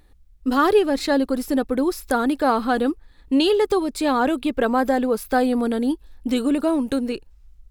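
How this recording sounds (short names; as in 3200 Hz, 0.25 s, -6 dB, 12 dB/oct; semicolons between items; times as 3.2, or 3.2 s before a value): noise floor -53 dBFS; spectral tilt -2.5 dB/oct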